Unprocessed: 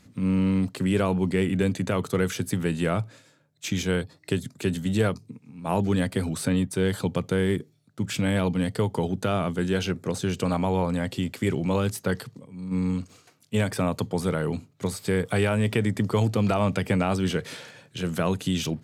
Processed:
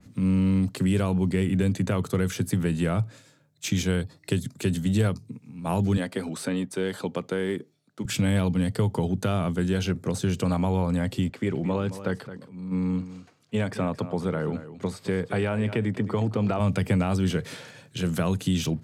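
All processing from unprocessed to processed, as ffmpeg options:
-filter_complex "[0:a]asettb=1/sr,asplit=3[s0][s1][s2];[s0]atrim=end=5.974[s3];[s1]atrim=start=5.97:end=8.05,asetpts=PTS-STARTPTS,afade=t=in:d=0.004:c=qsin,afade=t=out:st=2.076:d=0.004:c=qsin,highpass=280,highshelf=f=7100:g=-8.5[s4];[s2]atrim=start=8.046[s5];[s3][s4]acrossfade=d=0.004:c1=hsin:c2=qsin[s6];[s6][s5]acrossfade=d=0.004:c1=qsin:c2=hsin,asettb=1/sr,asplit=3[s7][s8][s9];[s7]atrim=end=11.294[s10];[s8]atrim=start=11.29:end=16.6,asetpts=PTS-STARTPTS,afade=t=in:d=0.004:c=qsin,afade=t=out:st=5.306:d=0.004:c=qsin,highpass=f=230:p=1,aemphasis=mode=reproduction:type=75fm,aecho=1:1:218:0.188,atrim=end_sample=234171[s11];[s9]atrim=start=16.596[s12];[s10][s11]acrossfade=d=0.004:c1=hsin:c2=qsin[s13];[s13][s12]acrossfade=d=0.004:c1=qsin:c2=hsin,bass=f=250:g=4,treble=f=4000:g=3,acrossover=split=150|3000[s14][s15][s16];[s15]acompressor=threshold=0.0708:ratio=6[s17];[s14][s17][s16]amix=inputs=3:normalize=0,adynamicequalizer=threshold=0.00631:dfrequency=2500:dqfactor=0.7:tfrequency=2500:tqfactor=0.7:attack=5:release=100:ratio=0.375:range=2:mode=cutabove:tftype=highshelf"

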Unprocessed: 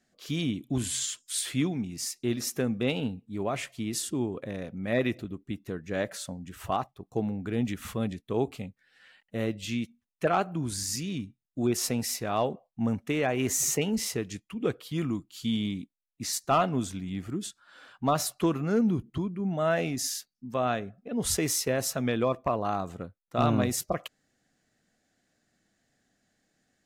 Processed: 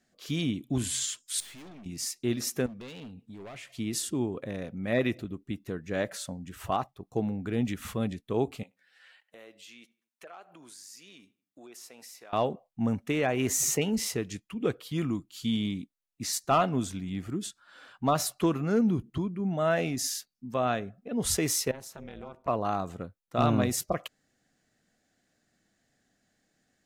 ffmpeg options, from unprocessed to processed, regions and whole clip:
-filter_complex "[0:a]asettb=1/sr,asplit=3[s0][s1][s2];[s0]atrim=end=1.404[s3];[s1]atrim=start=1.4:end=1.86,asetpts=PTS-STARTPTS,afade=t=in:d=0.004:c=qsin,afade=t=out:st=0.456:d=0.004:c=qsin,lowshelf=f=460:g=-10.5,aeval=exprs='(tanh(200*val(0)+0.3)-tanh(0.3))/200':c=same[s4];[s2]atrim=start=1.856[s5];[s3][s4]acrossfade=d=0.004:c1=hsin:c2=qsin[s6];[s6][s5]acrossfade=d=0.004:c1=qsin:c2=hsin,asettb=1/sr,asplit=3[s7][s8][s9];[s7]atrim=end=2.664[s10];[s8]atrim=start=2.66:end=3.78,asetpts=PTS-STARTPTS,afade=t=in:d=0.004:c=qsin,afade=t=out:st=1.116:d=0.004:c=qsin,asoftclip=type=hard:threshold=0.0355,equalizer=f=3400:t=o:w=2.1:g=4.5,acompressor=threshold=0.00891:ratio=12:attack=3.2:release=140:knee=1:detection=peak[s11];[s9]atrim=start=3.776[s12];[s10][s11]acrossfade=d=0.004:c1=hsin:c2=qsin[s13];[s13][s12]acrossfade=d=0.004:c1=qsin:c2=hsin,asettb=1/sr,asplit=3[s14][s15][s16];[s14]atrim=end=8.634[s17];[s15]atrim=start=8.63:end=12.33,asetpts=PTS-STARTPTS,afade=t=in:d=0.004:c=qsin,afade=t=out:st=3.696:d=0.004:c=qsin,highpass=540,acompressor=threshold=0.00282:ratio=3:attack=3.2:release=140:knee=1:detection=peak,asplit=2[s18][s19];[s19]adelay=79,lowpass=f=3600:p=1,volume=0.0708,asplit=2[s20][s21];[s21]adelay=79,lowpass=f=3600:p=1,volume=0.5,asplit=2[s22][s23];[s23]adelay=79,lowpass=f=3600:p=1,volume=0.5[s24];[s18][s20][s22][s24]amix=inputs=4:normalize=0,atrim=end_sample=163170[s25];[s16]atrim=start=12.326[s26];[s17][s25]acrossfade=d=0.004:c1=hsin:c2=qsin[s27];[s27][s26]acrossfade=d=0.004:c1=qsin:c2=hsin,asettb=1/sr,asplit=3[s28][s29][s30];[s28]atrim=end=21.714[s31];[s29]atrim=start=21.71:end=22.48,asetpts=PTS-STARTPTS,afade=t=in:d=0.004:c=qsin,afade=t=out:st=0.766:d=0.004:c=qsin,acompressor=threshold=0.00794:ratio=2.5:attack=3.2:release=140:knee=1:detection=peak,tremolo=f=280:d=0.947[s32];[s30]atrim=start=22.476[s33];[s31][s32]acrossfade=d=0.004:c1=hsin:c2=qsin[s34];[s34][s33]acrossfade=d=0.004:c1=qsin:c2=hsin"

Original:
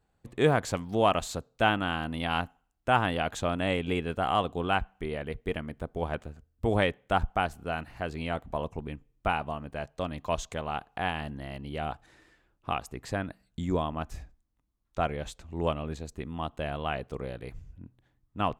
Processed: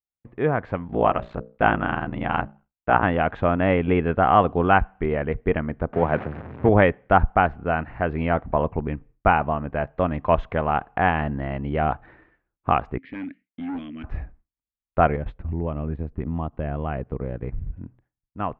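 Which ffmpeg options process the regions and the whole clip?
-filter_complex "[0:a]asettb=1/sr,asplit=3[s0][s1][s2];[s0]atrim=end=0.874[s3];[s1]atrim=start=0.87:end=3.03,asetpts=PTS-STARTPTS,afade=t=in:d=0.004:c=qsin,afade=t=out:st=2.156:d=0.004:c=qsin,bandreject=f=60:t=h:w=6,bandreject=f=120:t=h:w=6,bandreject=f=180:t=h:w=6,bandreject=f=240:t=h:w=6,bandreject=f=300:t=h:w=6,bandreject=f=360:t=h:w=6,bandreject=f=420:t=h:w=6,bandreject=f=480:t=h:w=6,bandreject=f=540:t=h:w=6,bandreject=f=600:t=h:w=6,aeval=exprs='val(0)*sin(2*PI*30*n/s)':c=same[s4];[s2]atrim=start=3.026[s5];[s3][s4]acrossfade=d=0.004:c1=hsin:c2=qsin[s6];[s6][s5]acrossfade=d=0.004:c1=qsin:c2=hsin,asettb=1/sr,asplit=3[s7][s8][s9];[s7]atrim=end=5.934[s10];[s8]atrim=start=5.93:end=6.69,asetpts=PTS-STARTPTS,afade=t=in:d=0.004:c=qsin,afade=t=out:st=0.756:d=0.004:c=qsin,aeval=exprs='val(0)+0.5*0.015*sgn(val(0))':c=same,highpass=f=96:w=0.5412,highpass=f=96:w=1.3066[s11];[s9]atrim=start=6.686[s12];[s10][s11]acrossfade=d=0.004:c1=hsin:c2=qsin[s13];[s13][s12]acrossfade=d=0.004:c1=qsin:c2=hsin,asettb=1/sr,asplit=3[s14][s15][s16];[s14]atrim=end=12.984[s17];[s15]atrim=start=12.98:end=14.04,asetpts=PTS-STARTPTS,afade=t=in:d=0.004:c=qsin,afade=t=out:st=1.056:d=0.004:c=qsin,asplit=3[s18][s19][s20];[s18]bandpass=f=270:t=q:w=8,volume=1[s21];[s19]bandpass=f=2290:t=q:w=8,volume=0.501[s22];[s20]bandpass=f=3010:t=q:w=8,volume=0.355[s23];[s21][s22][s23]amix=inputs=3:normalize=0,equalizer=f=3600:w=0.46:g=12,asoftclip=type=hard:threshold=0.0112[s24];[s16]atrim=start=14.036[s25];[s17][s24]acrossfade=d=0.004:c1=hsin:c2=qsin[s26];[s26][s25]acrossfade=d=0.004:c1=qsin:c2=hsin,asettb=1/sr,asplit=3[s27][s28][s29];[s27]atrim=end=15.164[s30];[s28]atrim=start=15.16:end=17.73,asetpts=PTS-STARTPTS,afade=t=in:d=0.004:c=qsin,afade=t=out:st=2.566:d=0.004:c=qsin,lowshelf=f=380:g=10,acompressor=threshold=0.0178:ratio=4:attack=3.2:release=140:knee=1:detection=peak,agate=range=0.251:threshold=0.00891:ratio=16:release=100:detection=peak[s31];[s29]atrim=start=17.726[s32];[s30][s31]acrossfade=d=0.004:c1=hsin:c2=qsin[s33];[s33][s32]acrossfade=d=0.004:c1=qsin:c2=hsin,lowpass=f=2100:w=0.5412,lowpass=f=2100:w=1.3066,agate=range=0.0224:threshold=0.002:ratio=3:detection=peak,dynaudnorm=f=130:g=13:m=3.76"

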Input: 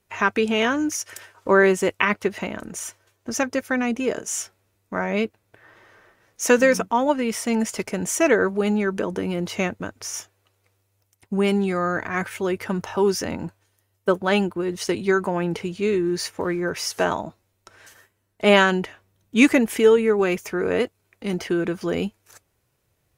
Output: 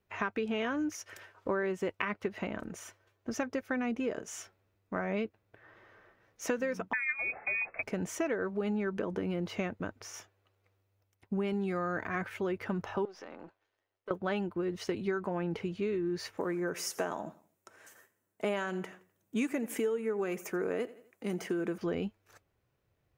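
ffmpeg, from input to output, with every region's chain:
-filter_complex "[0:a]asettb=1/sr,asplit=3[s0][s1][s2];[s0]atrim=end=6.934[s3];[s1]atrim=start=6.93:end=7.83,asetpts=PTS-STARTPTS,afade=t=in:d=0.004:c=qsin,afade=t=out:st=0.896:d=0.004:c=qsin,lowpass=f=2300:t=q:w=0.5098,lowpass=f=2300:t=q:w=0.6013,lowpass=f=2300:t=q:w=0.9,lowpass=f=2300:t=q:w=2.563,afreqshift=-2700,bandreject=f=60:t=h:w=6,bandreject=f=120:t=h:w=6,bandreject=f=180:t=h:w=6,bandreject=f=240:t=h:w=6,bandreject=f=300:t=h:w=6,bandreject=f=360:t=h:w=6,bandreject=f=420:t=h:w=6,bandreject=f=480:t=h:w=6,bandreject=f=540:t=h:w=6[s4];[s2]atrim=start=7.826[s5];[s3][s4]acrossfade=d=0.004:c1=hsin:c2=qsin[s6];[s6][s5]acrossfade=d=0.004:c1=qsin:c2=hsin,asettb=1/sr,asplit=3[s7][s8][s9];[s7]atrim=end=11.534[s10];[s8]atrim=start=11.53:end=12.16,asetpts=PTS-STARTPTS,afade=t=in:d=0.004:c=qsin,afade=t=out:st=0.626:d=0.004:c=qsin,highpass=47,highshelf=f=8000:g=10[s11];[s9]atrim=start=12.156[s12];[s10][s11]acrossfade=d=0.004:c1=hsin:c2=qsin[s13];[s13][s12]acrossfade=d=0.004:c1=qsin:c2=hsin,asettb=1/sr,asplit=3[s14][s15][s16];[s14]atrim=end=13.054[s17];[s15]atrim=start=13.05:end=14.11,asetpts=PTS-STARTPTS,afade=t=in:d=0.004:c=qsin,afade=t=out:st=1.056:d=0.004:c=qsin,aeval=exprs='if(lt(val(0),0),0.447*val(0),val(0))':c=same,acrossover=split=310 6300:gain=0.112 1 0.141[s18][s19][s20];[s18][s19][s20]amix=inputs=3:normalize=0,acompressor=threshold=0.0141:ratio=3:attack=3.2:release=140:knee=1:detection=peak[s21];[s16]atrim=start=14.106[s22];[s17][s21]acrossfade=d=0.004:c1=hsin:c2=qsin[s23];[s23][s22]acrossfade=d=0.004:c1=qsin:c2=hsin,asettb=1/sr,asplit=3[s24][s25][s26];[s24]atrim=end=16.374[s27];[s25]atrim=start=16.37:end=21.78,asetpts=PTS-STARTPTS,afade=t=in:d=0.004:c=qsin,afade=t=out:st=5.406:d=0.004:c=qsin,highpass=170,highshelf=f=5800:t=q:w=1.5:g=11,aecho=1:1:85|170|255:0.0891|0.0348|0.0136,atrim=end_sample=238581[s28];[s26]atrim=start=21.776[s29];[s27][s28]acrossfade=d=0.004:c1=hsin:c2=qsin[s30];[s30][s29]acrossfade=d=0.004:c1=qsin:c2=hsin,equalizer=f=9900:t=o:w=1.8:g=-14.5,bandreject=f=920:w=25,acompressor=threshold=0.0631:ratio=6,volume=0.531"

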